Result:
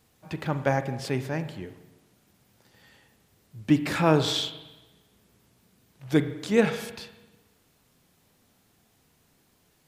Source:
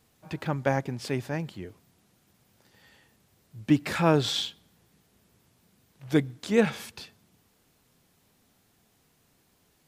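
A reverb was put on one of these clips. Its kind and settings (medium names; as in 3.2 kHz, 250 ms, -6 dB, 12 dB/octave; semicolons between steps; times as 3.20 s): spring tank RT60 1.1 s, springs 38/50 ms, chirp 30 ms, DRR 10 dB; trim +1 dB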